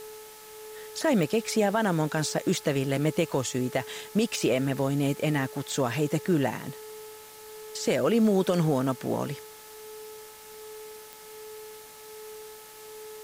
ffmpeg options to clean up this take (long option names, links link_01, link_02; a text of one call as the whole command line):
ffmpeg -i in.wav -af "adeclick=threshold=4,bandreject=frequency=431.3:width_type=h:width=4,bandreject=frequency=862.6:width_type=h:width=4,bandreject=frequency=1293.9:width_type=h:width=4,bandreject=frequency=1725.2:width_type=h:width=4,bandreject=frequency=2156.5:width_type=h:width=4,bandreject=frequency=430:width=30,afwtdn=0.004" out.wav